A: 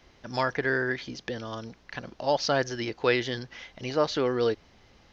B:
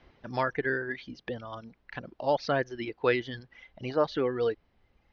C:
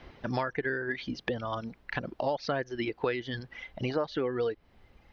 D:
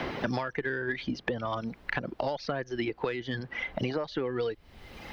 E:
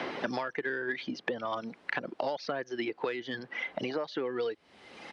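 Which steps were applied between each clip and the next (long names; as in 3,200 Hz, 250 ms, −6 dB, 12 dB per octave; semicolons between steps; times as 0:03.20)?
reverb reduction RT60 1.7 s; high-frequency loss of the air 250 metres
downward compressor 5 to 1, threshold −37 dBFS, peak gain reduction 15.5 dB; level +8.5 dB
one-sided soft clipper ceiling −15 dBFS; multiband upward and downward compressor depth 100%
high-pass filter 250 Hz 12 dB per octave; downsampling to 22,050 Hz; level −1 dB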